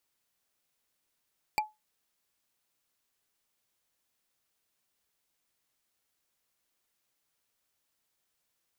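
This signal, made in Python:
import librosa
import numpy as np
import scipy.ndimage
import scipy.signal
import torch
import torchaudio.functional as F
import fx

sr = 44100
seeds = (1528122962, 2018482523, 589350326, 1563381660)

y = fx.strike_wood(sr, length_s=0.45, level_db=-21.5, body='bar', hz=856.0, decay_s=0.2, tilt_db=2.5, modes=5)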